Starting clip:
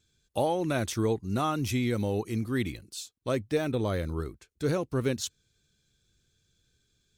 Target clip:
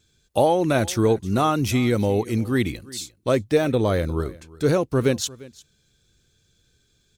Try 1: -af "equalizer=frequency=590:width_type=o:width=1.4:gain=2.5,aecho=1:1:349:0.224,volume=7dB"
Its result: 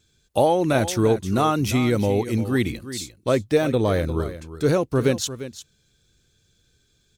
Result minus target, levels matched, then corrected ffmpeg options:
echo-to-direct +8 dB
-af "equalizer=frequency=590:width_type=o:width=1.4:gain=2.5,aecho=1:1:349:0.0891,volume=7dB"

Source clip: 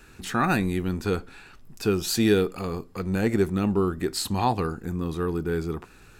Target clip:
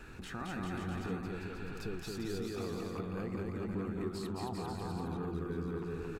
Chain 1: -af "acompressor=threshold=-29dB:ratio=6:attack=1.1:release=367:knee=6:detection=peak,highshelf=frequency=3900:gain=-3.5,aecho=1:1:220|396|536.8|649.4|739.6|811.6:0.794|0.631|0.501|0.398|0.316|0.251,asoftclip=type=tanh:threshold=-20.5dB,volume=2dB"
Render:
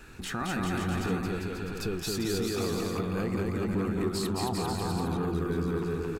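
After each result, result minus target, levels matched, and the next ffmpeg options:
downward compressor: peak gain reduction −9 dB; 8,000 Hz band +6.0 dB
-af "acompressor=threshold=-39.5dB:ratio=6:attack=1.1:release=367:knee=6:detection=peak,highshelf=frequency=3900:gain=-3.5,aecho=1:1:220|396|536.8|649.4|739.6|811.6:0.794|0.631|0.501|0.398|0.316|0.251,asoftclip=type=tanh:threshold=-20.5dB,volume=2dB"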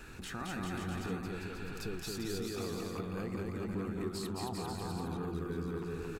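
8,000 Hz band +6.0 dB
-af "acompressor=threshold=-39.5dB:ratio=6:attack=1.1:release=367:knee=6:detection=peak,highshelf=frequency=3900:gain=-11.5,aecho=1:1:220|396|536.8|649.4|739.6|811.6:0.794|0.631|0.501|0.398|0.316|0.251,asoftclip=type=tanh:threshold=-20.5dB,volume=2dB"

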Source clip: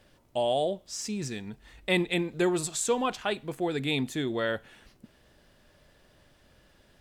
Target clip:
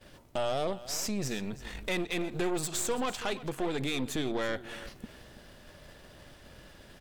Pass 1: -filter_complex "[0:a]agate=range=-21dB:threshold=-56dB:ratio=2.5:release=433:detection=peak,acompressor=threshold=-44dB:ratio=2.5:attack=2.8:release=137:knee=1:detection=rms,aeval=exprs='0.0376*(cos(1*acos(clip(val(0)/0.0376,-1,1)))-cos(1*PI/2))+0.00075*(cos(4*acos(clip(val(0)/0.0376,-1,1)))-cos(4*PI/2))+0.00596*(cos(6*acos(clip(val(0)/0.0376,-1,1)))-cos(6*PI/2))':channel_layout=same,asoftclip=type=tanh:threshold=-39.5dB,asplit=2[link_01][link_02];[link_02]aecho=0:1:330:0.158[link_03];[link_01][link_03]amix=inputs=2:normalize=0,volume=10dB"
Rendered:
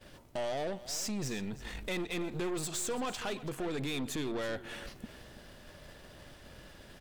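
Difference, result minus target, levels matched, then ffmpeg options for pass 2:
soft clipping: distortion +13 dB
-filter_complex "[0:a]agate=range=-21dB:threshold=-56dB:ratio=2.5:release=433:detection=peak,acompressor=threshold=-44dB:ratio=2.5:attack=2.8:release=137:knee=1:detection=rms,aeval=exprs='0.0376*(cos(1*acos(clip(val(0)/0.0376,-1,1)))-cos(1*PI/2))+0.00075*(cos(4*acos(clip(val(0)/0.0376,-1,1)))-cos(4*PI/2))+0.00596*(cos(6*acos(clip(val(0)/0.0376,-1,1)))-cos(6*PI/2))':channel_layout=same,asoftclip=type=tanh:threshold=-29.5dB,asplit=2[link_01][link_02];[link_02]aecho=0:1:330:0.158[link_03];[link_01][link_03]amix=inputs=2:normalize=0,volume=10dB"

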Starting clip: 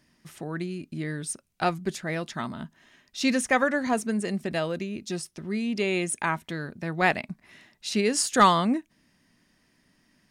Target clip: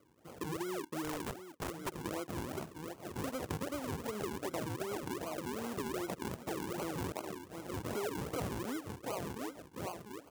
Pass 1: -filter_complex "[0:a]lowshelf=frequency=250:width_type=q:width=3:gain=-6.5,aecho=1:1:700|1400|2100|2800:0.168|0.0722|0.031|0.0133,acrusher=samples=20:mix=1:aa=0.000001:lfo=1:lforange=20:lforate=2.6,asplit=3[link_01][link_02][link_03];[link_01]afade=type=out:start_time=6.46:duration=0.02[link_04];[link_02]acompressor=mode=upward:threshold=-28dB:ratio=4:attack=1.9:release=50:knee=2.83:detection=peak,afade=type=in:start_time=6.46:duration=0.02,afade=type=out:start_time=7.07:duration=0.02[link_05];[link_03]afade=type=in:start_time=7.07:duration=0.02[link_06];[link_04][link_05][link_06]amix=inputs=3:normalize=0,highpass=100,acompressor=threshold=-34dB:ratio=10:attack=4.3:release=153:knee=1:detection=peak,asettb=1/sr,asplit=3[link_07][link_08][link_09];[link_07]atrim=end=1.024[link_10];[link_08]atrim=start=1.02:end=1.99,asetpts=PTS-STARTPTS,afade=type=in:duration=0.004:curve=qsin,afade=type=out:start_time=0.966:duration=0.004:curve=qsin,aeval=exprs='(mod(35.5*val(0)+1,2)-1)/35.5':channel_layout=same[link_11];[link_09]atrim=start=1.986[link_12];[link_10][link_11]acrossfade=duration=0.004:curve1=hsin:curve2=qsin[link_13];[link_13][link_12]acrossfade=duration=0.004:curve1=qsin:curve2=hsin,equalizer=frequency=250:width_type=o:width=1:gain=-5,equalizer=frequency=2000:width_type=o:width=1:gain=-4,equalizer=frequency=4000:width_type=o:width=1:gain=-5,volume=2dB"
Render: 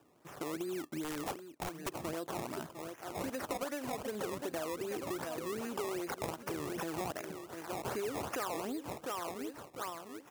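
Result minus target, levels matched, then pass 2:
sample-and-hold swept by an LFO: distortion −10 dB
-filter_complex "[0:a]lowshelf=frequency=250:width_type=q:width=3:gain=-6.5,aecho=1:1:700|1400|2100|2800:0.168|0.0722|0.031|0.0133,acrusher=samples=48:mix=1:aa=0.000001:lfo=1:lforange=48:lforate=2.6,asplit=3[link_01][link_02][link_03];[link_01]afade=type=out:start_time=6.46:duration=0.02[link_04];[link_02]acompressor=mode=upward:threshold=-28dB:ratio=4:attack=1.9:release=50:knee=2.83:detection=peak,afade=type=in:start_time=6.46:duration=0.02,afade=type=out:start_time=7.07:duration=0.02[link_05];[link_03]afade=type=in:start_time=7.07:duration=0.02[link_06];[link_04][link_05][link_06]amix=inputs=3:normalize=0,highpass=100,acompressor=threshold=-34dB:ratio=10:attack=4.3:release=153:knee=1:detection=peak,asettb=1/sr,asplit=3[link_07][link_08][link_09];[link_07]atrim=end=1.024[link_10];[link_08]atrim=start=1.02:end=1.99,asetpts=PTS-STARTPTS,afade=type=in:duration=0.004:curve=qsin,afade=type=out:start_time=0.966:duration=0.004:curve=qsin,aeval=exprs='(mod(35.5*val(0)+1,2)-1)/35.5':channel_layout=same[link_11];[link_09]atrim=start=1.986[link_12];[link_10][link_11]acrossfade=duration=0.004:curve1=hsin:curve2=qsin[link_13];[link_13][link_12]acrossfade=duration=0.004:curve1=qsin:curve2=hsin,equalizer=frequency=250:width_type=o:width=1:gain=-5,equalizer=frequency=2000:width_type=o:width=1:gain=-4,equalizer=frequency=4000:width_type=o:width=1:gain=-5,volume=2dB"

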